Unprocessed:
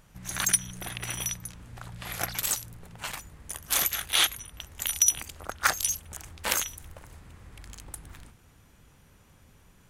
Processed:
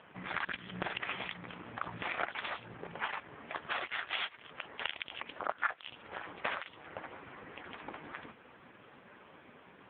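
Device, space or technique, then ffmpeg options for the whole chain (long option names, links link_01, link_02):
voicemail: -af "highpass=310,lowpass=2600,acompressor=threshold=-41dB:ratio=8,volume=13dB" -ar 8000 -c:a libopencore_amrnb -b:a 5150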